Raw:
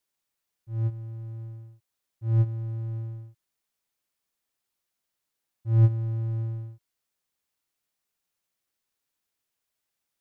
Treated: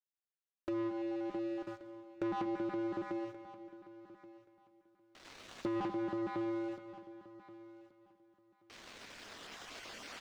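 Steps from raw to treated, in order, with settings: random spectral dropouts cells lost 22%; recorder AGC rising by 5.4 dB/s; Chebyshev high-pass 200 Hz, order 6; gate with hold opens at -58 dBFS; notch 890 Hz, Q 12; sample leveller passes 5; compressor 6:1, threshold -50 dBFS, peak gain reduction 18 dB; air absorption 150 m; feedback echo 1.128 s, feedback 18%, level -17 dB; plate-style reverb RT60 1.8 s, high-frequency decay 1×, pre-delay 0.11 s, DRR 12.5 dB; gain +13 dB

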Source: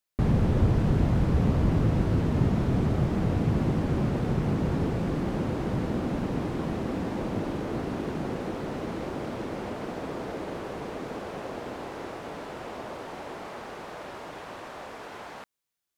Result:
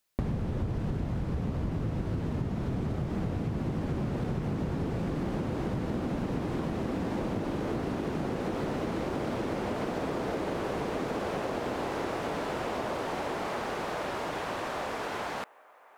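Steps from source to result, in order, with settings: compressor 12:1, threshold -35 dBFS, peak gain reduction 18 dB; on a send: band-limited delay 0.928 s, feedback 70%, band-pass 1200 Hz, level -23 dB; on the sum: gain +7 dB

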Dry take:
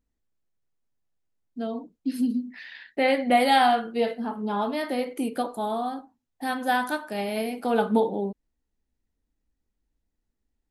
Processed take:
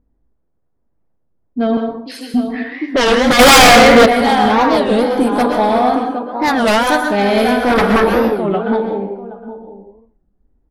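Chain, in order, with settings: 4.73–5.38 bell 1800 Hz -12 dB 0.75 oct; feedback echo 0.764 s, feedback 17%, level -10 dB; low-pass opened by the level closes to 830 Hz, open at -21.5 dBFS; 1.77–2.34 HPF 520 Hz 24 dB/oct; sine folder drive 13 dB, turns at -8 dBFS; notch 2800 Hz, Q 16; plate-style reverb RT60 0.58 s, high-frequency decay 0.65×, pre-delay 0.105 s, DRR 4 dB; 3.39–4.06 sample leveller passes 3; record warp 33 1/3 rpm, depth 250 cents; gain -1 dB

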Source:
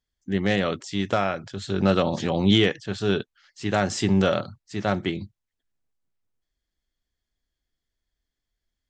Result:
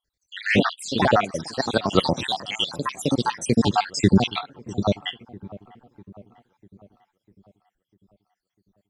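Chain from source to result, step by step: random spectral dropouts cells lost 78%; dark delay 0.648 s, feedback 52%, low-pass 1100 Hz, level -18 dB; echoes that change speed 0.1 s, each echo +3 st, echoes 2; gain +7 dB

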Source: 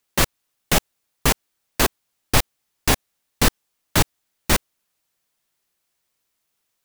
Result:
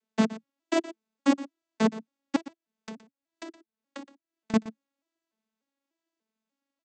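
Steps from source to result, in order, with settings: arpeggiated vocoder major triad, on A3, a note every 0.295 s; low shelf 450 Hz +7 dB; 2.36–4.54 compressor 5:1, threshold -36 dBFS, peak gain reduction 22 dB; echo 0.119 s -16.5 dB; gain -6.5 dB

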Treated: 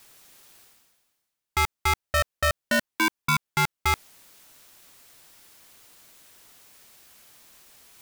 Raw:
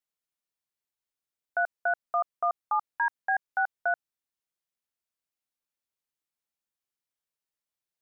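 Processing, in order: reverse; upward compressor, threshold -31 dBFS; reverse; polarity switched at an audio rate 620 Hz; gain +4 dB

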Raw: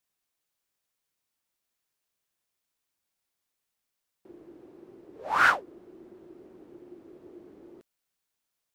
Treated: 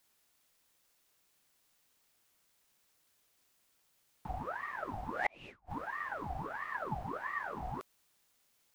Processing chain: flipped gate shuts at -29 dBFS, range -42 dB; ring modulator with a swept carrier 960 Hz, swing 60%, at 1.5 Hz; gain +13 dB

